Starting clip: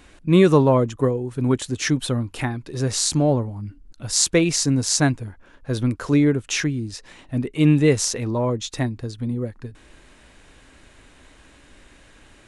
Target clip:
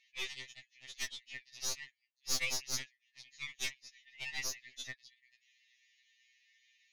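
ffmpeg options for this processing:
ffmpeg -i in.wav -filter_complex "[0:a]atempo=1.8,asplit=2[link_01][link_02];[link_02]acrusher=bits=2:mix=0:aa=0.5,volume=-4.5dB[link_03];[link_01][link_03]amix=inputs=2:normalize=0,afftfilt=real='re*between(b*sr/4096,1700,6900)':imag='im*between(b*sr/4096,1700,6900)':win_size=4096:overlap=0.75,aeval=exprs='(tanh(7.94*val(0)+0.7)-tanh(0.7))/7.94':channel_layout=same,afftfilt=real='re*2.45*eq(mod(b,6),0)':imag='im*2.45*eq(mod(b,6),0)':win_size=2048:overlap=0.75,volume=-6dB" out.wav

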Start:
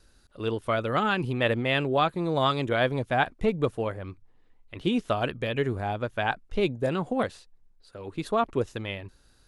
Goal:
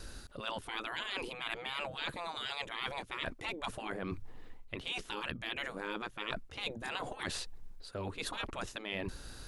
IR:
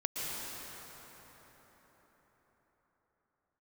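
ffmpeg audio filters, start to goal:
-af "afftfilt=real='re*lt(hypot(re,im),0.0794)':imag='im*lt(hypot(re,im),0.0794)':win_size=1024:overlap=0.75,areverse,acompressor=threshold=-49dB:ratio=8,areverse,volume=13dB"

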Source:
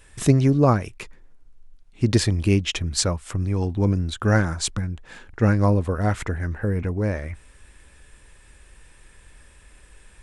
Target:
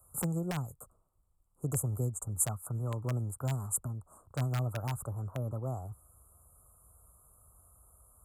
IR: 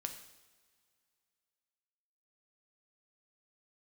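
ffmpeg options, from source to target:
-filter_complex "[0:a]highpass=66,equalizer=frequency=230:width_type=o:width=2.3:gain=-14,acrossover=split=150|3000[link_01][link_02][link_03];[link_02]acompressor=threshold=-32dB:ratio=6[link_04];[link_01][link_04][link_03]amix=inputs=3:normalize=0,asetrate=54684,aresample=44100,asuperstop=centerf=3200:order=20:qfactor=0.54,acrossover=split=310|1400|2600[link_05][link_06][link_07][link_08];[link_06]aeval=exprs='(mod(26.6*val(0)+1,2)-1)/26.6':channel_layout=same[link_09];[link_05][link_09][link_07][link_08]amix=inputs=4:normalize=0,volume=-3dB"

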